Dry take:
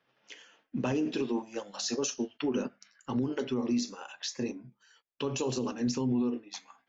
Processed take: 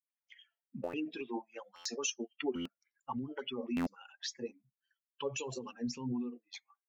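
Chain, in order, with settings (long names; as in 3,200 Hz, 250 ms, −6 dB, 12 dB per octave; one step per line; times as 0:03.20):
spectral dynamics exaggerated over time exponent 2
high-shelf EQ 4,000 Hz +6 dB
buffer that repeats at 0:00.83/0:01.75/0:02.55/0:03.76, samples 512, times 8
auto-filter bell 3.6 Hz 520–3,100 Hz +16 dB
level −6 dB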